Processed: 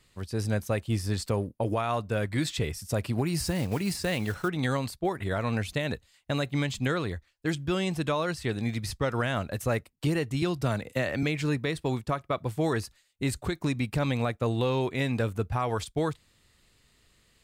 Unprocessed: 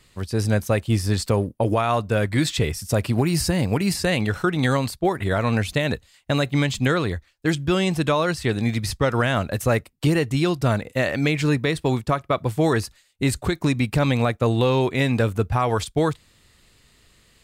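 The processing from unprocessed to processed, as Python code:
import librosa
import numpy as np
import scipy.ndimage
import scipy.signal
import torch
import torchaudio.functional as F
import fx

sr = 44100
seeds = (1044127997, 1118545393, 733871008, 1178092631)

y = fx.block_float(x, sr, bits=5, at=(3.39, 4.49))
y = fx.band_squash(y, sr, depth_pct=70, at=(10.42, 11.23))
y = y * librosa.db_to_amplitude(-7.5)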